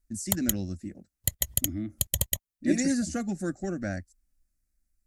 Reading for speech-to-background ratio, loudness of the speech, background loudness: −2.0 dB, −31.5 LKFS, −29.5 LKFS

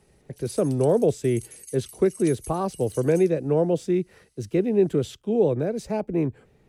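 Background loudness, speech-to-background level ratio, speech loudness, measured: −43.0 LKFS, 18.5 dB, −24.5 LKFS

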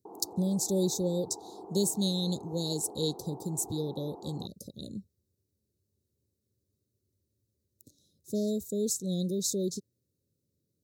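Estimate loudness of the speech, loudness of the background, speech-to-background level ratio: −32.0 LKFS, −47.0 LKFS, 15.0 dB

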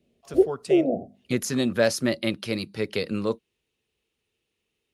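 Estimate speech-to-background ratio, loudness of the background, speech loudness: −3.5 dB, −24.0 LKFS, −27.5 LKFS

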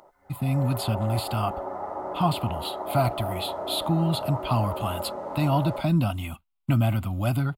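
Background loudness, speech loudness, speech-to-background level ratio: −34.0 LKFS, −27.0 LKFS, 7.0 dB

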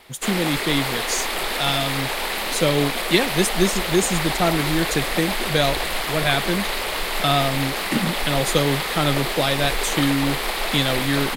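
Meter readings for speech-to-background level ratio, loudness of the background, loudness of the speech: 1.0 dB, −24.0 LKFS, −23.0 LKFS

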